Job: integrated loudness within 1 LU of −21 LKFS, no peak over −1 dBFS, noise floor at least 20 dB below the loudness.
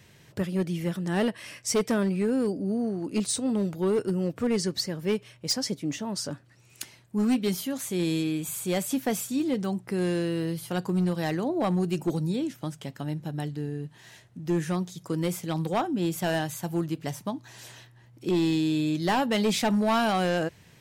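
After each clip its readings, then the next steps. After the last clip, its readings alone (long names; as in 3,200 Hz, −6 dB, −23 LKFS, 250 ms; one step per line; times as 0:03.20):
share of clipped samples 1.8%; peaks flattened at −19.5 dBFS; integrated loudness −28.0 LKFS; sample peak −19.5 dBFS; target loudness −21.0 LKFS
→ clipped peaks rebuilt −19.5 dBFS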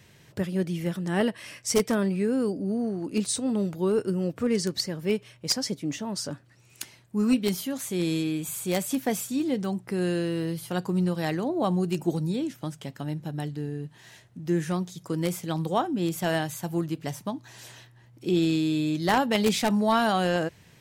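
share of clipped samples 0.0%; integrated loudness −27.5 LKFS; sample peak −10.5 dBFS; target loudness −21.0 LKFS
→ level +6.5 dB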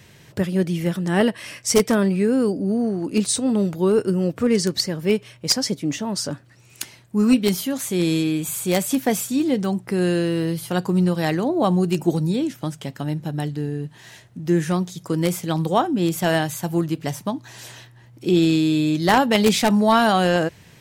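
integrated loudness −21.0 LKFS; sample peak −4.0 dBFS; background noise floor −49 dBFS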